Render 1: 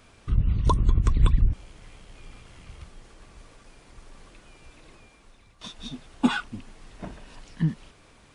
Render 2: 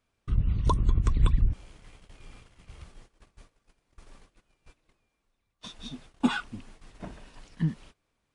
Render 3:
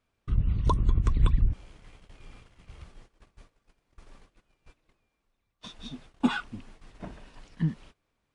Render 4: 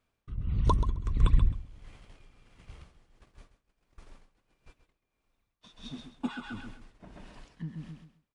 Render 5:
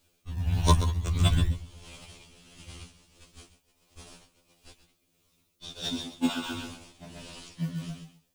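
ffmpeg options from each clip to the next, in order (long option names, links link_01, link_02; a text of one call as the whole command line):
ffmpeg -i in.wav -af "agate=range=-20dB:threshold=-46dB:ratio=16:detection=peak,volume=-3dB" out.wav
ffmpeg -i in.wav -af "highshelf=frequency=6900:gain=-7.5" out.wav
ffmpeg -i in.wav -af "aecho=1:1:132|264|396|528:0.398|0.123|0.0383|0.0119,tremolo=f=1.5:d=0.75" out.wav
ffmpeg -i in.wav -filter_complex "[0:a]aexciter=amount=4.8:drive=4.3:freq=2500,asplit=2[link_01][link_02];[link_02]acrusher=samples=36:mix=1:aa=0.000001:lfo=1:lforange=36:lforate=0.42,volume=-5.5dB[link_03];[link_01][link_03]amix=inputs=2:normalize=0,afftfilt=real='re*2*eq(mod(b,4),0)':imag='im*2*eq(mod(b,4),0)':win_size=2048:overlap=0.75,volume=4.5dB" out.wav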